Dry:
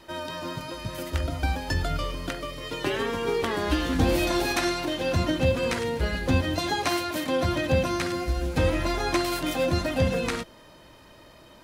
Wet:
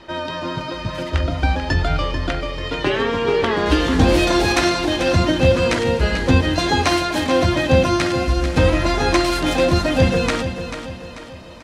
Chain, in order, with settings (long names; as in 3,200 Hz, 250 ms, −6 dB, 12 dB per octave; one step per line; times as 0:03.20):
low-pass filter 4,600 Hz 12 dB per octave, from 0:03.66 8,400 Hz
repeating echo 440 ms, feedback 44%, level −10 dB
level +8 dB